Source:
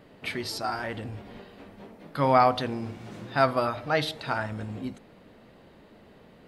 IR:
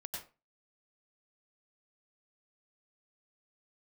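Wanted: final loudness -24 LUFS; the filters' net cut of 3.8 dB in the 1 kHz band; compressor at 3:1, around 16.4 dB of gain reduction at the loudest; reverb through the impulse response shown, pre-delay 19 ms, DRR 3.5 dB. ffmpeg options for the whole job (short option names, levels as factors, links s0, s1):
-filter_complex "[0:a]equalizer=f=1000:t=o:g=-5.5,acompressor=threshold=0.00891:ratio=3,asplit=2[s0][s1];[1:a]atrim=start_sample=2205,adelay=19[s2];[s1][s2]afir=irnorm=-1:irlink=0,volume=0.794[s3];[s0][s3]amix=inputs=2:normalize=0,volume=6.68"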